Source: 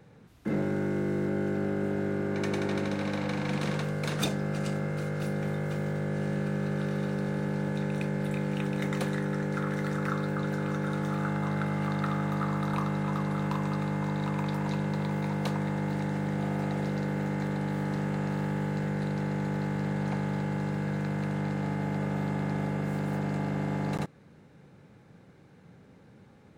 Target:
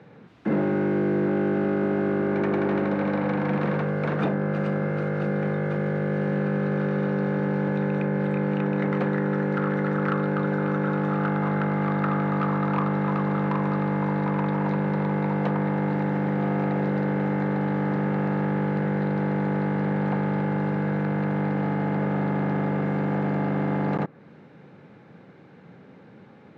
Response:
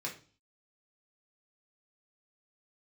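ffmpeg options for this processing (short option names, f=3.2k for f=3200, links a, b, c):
-filter_complex "[0:a]acrossover=split=2000[a][b];[b]acompressor=threshold=-57dB:ratio=6[c];[a][c]amix=inputs=2:normalize=0,volume=25dB,asoftclip=hard,volume=-25dB,highpass=160,lowpass=3.2k,volume=8dB"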